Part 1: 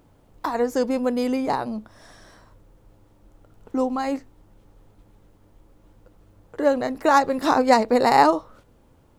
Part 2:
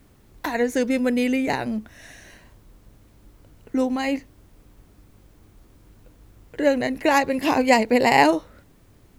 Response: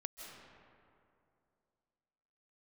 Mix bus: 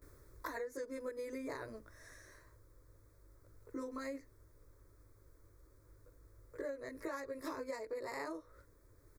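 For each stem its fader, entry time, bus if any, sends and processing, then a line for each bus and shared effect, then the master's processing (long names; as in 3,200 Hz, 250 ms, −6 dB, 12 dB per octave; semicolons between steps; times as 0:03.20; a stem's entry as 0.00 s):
−12.0 dB, 0.00 s, no send, notch filter 1,500 Hz, Q 5.5
−0.5 dB, 18 ms, no send, automatic ducking −10 dB, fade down 0.70 s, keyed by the first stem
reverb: not used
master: phaser with its sweep stopped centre 780 Hz, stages 6; downward compressor 16 to 1, threshold −39 dBFS, peak gain reduction 16 dB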